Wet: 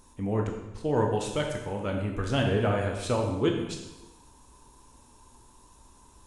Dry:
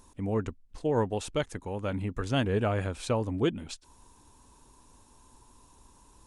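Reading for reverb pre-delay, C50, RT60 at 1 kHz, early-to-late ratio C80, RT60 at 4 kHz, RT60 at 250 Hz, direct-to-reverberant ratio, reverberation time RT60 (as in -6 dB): 11 ms, 4.5 dB, 1.0 s, 6.5 dB, 0.95 s, 1.1 s, 1.0 dB, 1.0 s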